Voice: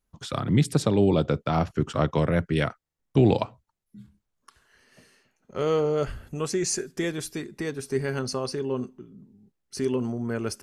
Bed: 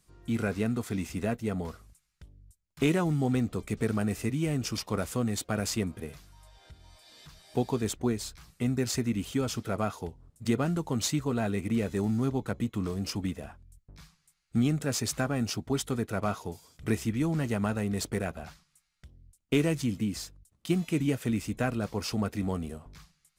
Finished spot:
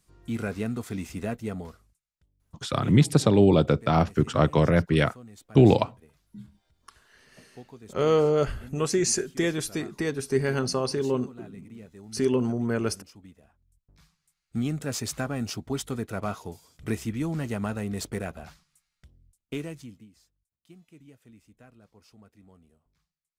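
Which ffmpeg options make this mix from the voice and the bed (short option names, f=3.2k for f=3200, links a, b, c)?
-filter_complex "[0:a]adelay=2400,volume=2.5dB[a];[1:a]volume=15.5dB,afade=t=out:st=1.47:d=0.54:silence=0.149624,afade=t=in:st=13.52:d=1.37:silence=0.149624,afade=t=out:st=18.78:d=1.31:silence=0.0668344[b];[a][b]amix=inputs=2:normalize=0"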